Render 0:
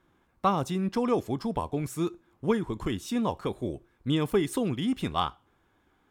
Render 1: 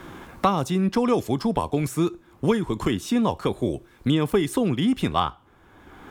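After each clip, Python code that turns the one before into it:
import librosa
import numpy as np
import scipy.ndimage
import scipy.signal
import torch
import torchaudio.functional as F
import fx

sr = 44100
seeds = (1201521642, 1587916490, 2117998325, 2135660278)

y = fx.band_squash(x, sr, depth_pct=70)
y = F.gain(torch.from_numpy(y), 5.5).numpy()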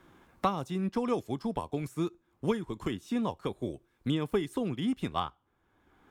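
y = fx.upward_expand(x, sr, threshold_db=-38.0, expansion=1.5)
y = F.gain(torch.from_numpy(y), -7.0).numpy()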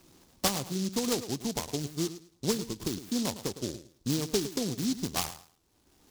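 y = fx.echo_feedback(x, sr, ms=108, feedback_pct=22, wet_db=-13)
y = fx.noise_mod_delay(y, sr, seeds[0], noise_hz=5000.0, depth_ms=0.19)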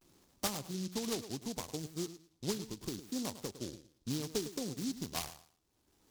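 y = fx.vibrato(x, sr, rate_hz=0.7, depth_cents=98.0)
y = F.gain(torch.from_numpy(y), -7.5).numpy()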